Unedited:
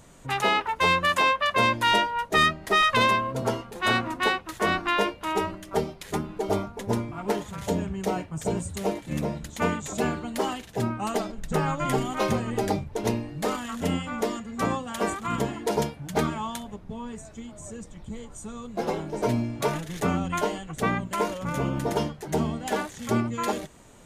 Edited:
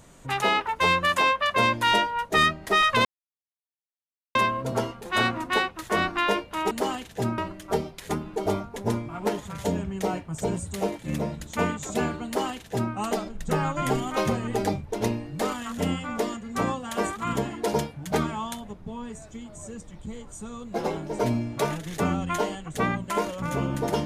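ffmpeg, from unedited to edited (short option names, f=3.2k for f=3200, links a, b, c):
-filter_complex "[0:a]asplit=4[a][b][c][d];[a]atrim=end=3.05,asetpts=PTS-STARTPTS,afade=t=out:st=3.046:d=0.004:c=hsin,apad=pad_dur=1.3[e];[b]atrim=start=3.05:end=5.412,asetpts=PTS-STARTPTS,afade=t=in:d=0.004:c=hsin[f];[c]atrim=start=10.288:end=10.962[g];[d]atrim=start=5.408[h];[e][f]concat=n=2:v=0:a=1[i];[i][g]acrossfade=d=0.004:c1=hsin:c2=hsin[j];[j][h]acrossfade=d=0.004:c1=hsin:c2=hsin"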